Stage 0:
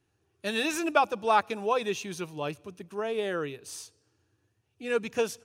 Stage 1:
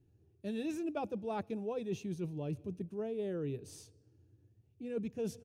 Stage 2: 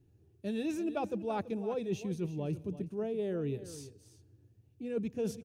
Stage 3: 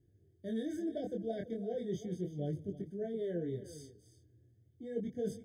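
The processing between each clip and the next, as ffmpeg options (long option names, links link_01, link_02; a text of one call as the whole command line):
ffmpeg -i in.wav -af "firequalizer=gain_entry='entry(110,0);entry(1100,-25);entry(2200,-21)':delay=0.05:min_phase=1,areverse,acompressor=threshold=-44dB:ratio=6,areverse,volume=9dB" out.wav
ffmpeg -i in.wav -af "aecho=1:1:334:0.2,volume=3dB" out.wav
ffmpeg -i in.wav -af "flanger=delay=20:depth=6.6:speed=0.37,afftfilt=real='re*eq(mod(floor(b*sr/1024/750),2),0)':imag='im*eq(mod(floor(b*sr/1024/750),2),0)':win_size=1024:overlap=0.75" out.wav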